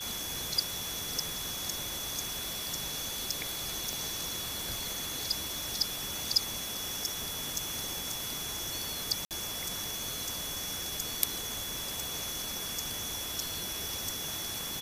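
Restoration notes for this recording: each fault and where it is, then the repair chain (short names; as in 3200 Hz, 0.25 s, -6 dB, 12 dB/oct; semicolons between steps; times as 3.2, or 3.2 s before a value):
tone 3400 Hz -40 dBFS
3.93 pop
9.25–9.31 gap 58 ms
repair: de-click; notch 3400 Hz, Q 30; interpolate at 9.25, 58 ms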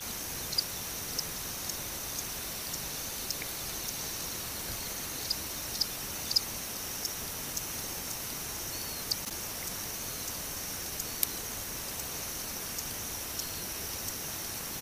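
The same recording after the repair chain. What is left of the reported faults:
none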